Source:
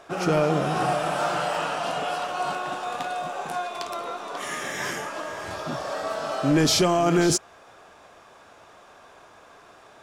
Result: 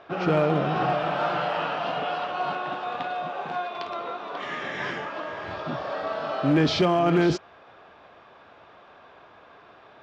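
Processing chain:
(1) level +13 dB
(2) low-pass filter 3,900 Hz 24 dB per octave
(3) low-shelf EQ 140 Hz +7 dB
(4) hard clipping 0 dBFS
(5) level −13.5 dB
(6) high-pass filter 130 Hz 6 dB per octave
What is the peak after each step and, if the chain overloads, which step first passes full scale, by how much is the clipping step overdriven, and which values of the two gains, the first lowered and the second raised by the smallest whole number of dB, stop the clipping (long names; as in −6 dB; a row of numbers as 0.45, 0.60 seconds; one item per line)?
+1.5, +1.5, +3.0, 0.0, −13.5, −11.0 dBFS
step 1, 3.0 dB
step 1 +10 dB, step 5 −10.5 dB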